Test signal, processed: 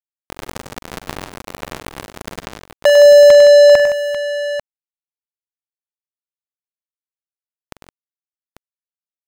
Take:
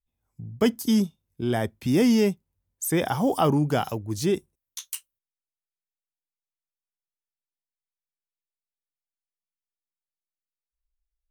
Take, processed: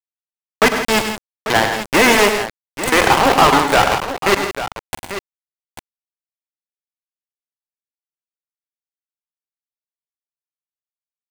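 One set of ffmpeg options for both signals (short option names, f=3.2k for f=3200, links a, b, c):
-filter_complex "[0:a]agate=range=-33dB:threshold=-55dB:ratio=3:detection=peak,equalizer=f=125:t=o:w=1:g=-12,equalizer=f=1k:t=o:w=1:g=11,equalizer=f=2k:t=o:w=1:g=10,equalizer=f=4k:t=o:w=1:g=-10,equalizer=f=8k:t=o:w=1:g=7,aeval=exprs='val(0)*gte(abs(val(0)),0.126)':c=same,asplit=2[a][b];[b]highpass=f=720:p=1,volume=38dB,asoftclip=type=tanh:threshold=-2dB[c];[a][c]amix=inputs=2:normalize=0,lowpass=f=4.2k:p=1,volume=-6dB,asplit=2[d][e];[e]aecho=0:1:44|100|119|143|165|843:0.178|0.355|0.158|0.126|0.282|0.266[f];[d][f]amix=inputs=2:normalize=0,volume=-1.5dB"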